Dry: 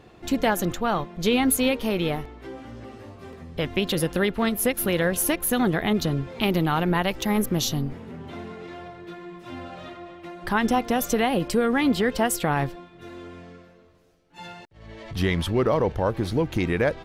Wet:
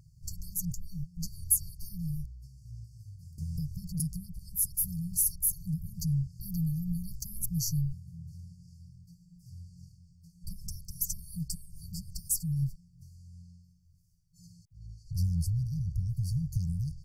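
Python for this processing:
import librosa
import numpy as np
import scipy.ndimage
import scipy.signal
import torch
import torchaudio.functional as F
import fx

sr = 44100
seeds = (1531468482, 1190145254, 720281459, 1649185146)

y = fx.brickwall_bandstop(x, sr, low_hz=170.0, high_hz=4400.0)
y = fx.peak_eq(y, sr, hz=4500.0, db=-6.5, octaves=1.3)
y = fx.band_squash(y, sr, depth_pct=100, at=(3.38, 4.0))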